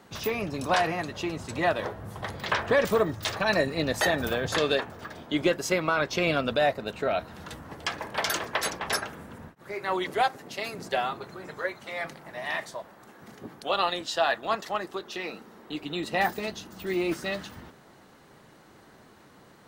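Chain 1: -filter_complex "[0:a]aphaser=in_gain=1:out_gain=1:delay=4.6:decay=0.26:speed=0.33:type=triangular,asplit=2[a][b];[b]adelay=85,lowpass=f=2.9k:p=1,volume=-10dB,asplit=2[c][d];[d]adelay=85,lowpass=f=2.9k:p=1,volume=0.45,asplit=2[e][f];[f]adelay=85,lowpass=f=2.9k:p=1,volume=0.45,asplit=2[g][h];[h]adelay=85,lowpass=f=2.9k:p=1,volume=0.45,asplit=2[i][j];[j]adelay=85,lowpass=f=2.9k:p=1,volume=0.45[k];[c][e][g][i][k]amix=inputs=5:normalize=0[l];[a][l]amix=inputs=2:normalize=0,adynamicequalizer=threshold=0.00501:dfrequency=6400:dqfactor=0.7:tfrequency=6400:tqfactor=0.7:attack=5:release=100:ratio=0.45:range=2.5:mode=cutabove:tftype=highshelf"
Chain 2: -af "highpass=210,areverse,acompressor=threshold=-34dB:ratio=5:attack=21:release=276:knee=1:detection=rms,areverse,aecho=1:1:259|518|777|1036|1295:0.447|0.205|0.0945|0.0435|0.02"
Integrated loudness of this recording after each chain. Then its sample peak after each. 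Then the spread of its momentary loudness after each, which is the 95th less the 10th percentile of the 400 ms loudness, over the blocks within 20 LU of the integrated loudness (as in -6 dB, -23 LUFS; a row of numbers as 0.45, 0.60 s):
-28.0, -37.5 LUFS; -8.0, -21.5 dBFS; 14, 10 LU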